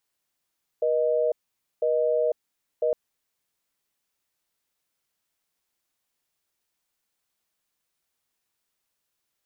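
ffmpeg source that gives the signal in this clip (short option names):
-f lavfi -i "aevalsrc='0.0708*(sin(2*PI*480*t)+sin(2*PI*620*t))*clip(min(mod(t,1),0.5-mod(t,1))/0.005,0,1)':d=2.11:s=44100"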